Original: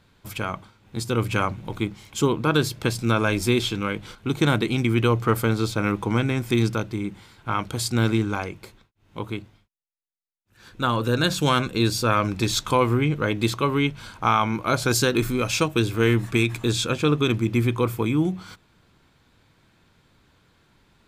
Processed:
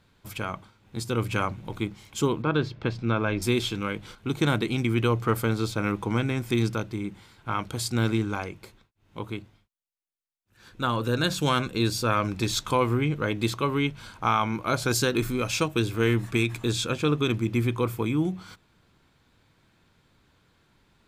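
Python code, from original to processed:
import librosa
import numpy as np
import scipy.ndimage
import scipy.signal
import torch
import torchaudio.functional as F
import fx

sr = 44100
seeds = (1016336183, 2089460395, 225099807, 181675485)

y = fx.air_absorb(x, sr, metres=230.0, at=(2.42, 3.42))
y = y * 10.0 ** (-3.5 / 20.0)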